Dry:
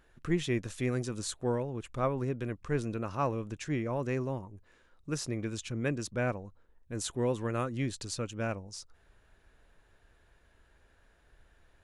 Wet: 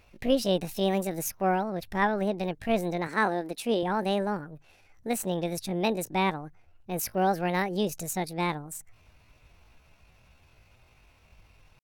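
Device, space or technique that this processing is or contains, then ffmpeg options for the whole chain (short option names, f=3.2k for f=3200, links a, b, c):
chipmunk voice: -filter_complex "[0:a]asetrate=68011,aresample=44100,atempo=0.64842,asettb=1/sr,asplit=3[a][b][c];[a]atrim=end=3.074[d];[b]atrim=start=3.07:end=3.83,asetpts=PTS-STARTPTS,afade=t=in:d=0.004:c=qsin,afade=t=out:st=0.756:d=0.004:c=qsin,lowshelf=f=180:t=q:w=1.5:g=-11.5[e];[c]atrim=start=3.826[f];[d][e]acrossfade=d=0.004:c1=hsin:c2=qsin[g];[g][f]acrossfade=d=0.004:c1=qsin:c2=hsin,volume=5dB"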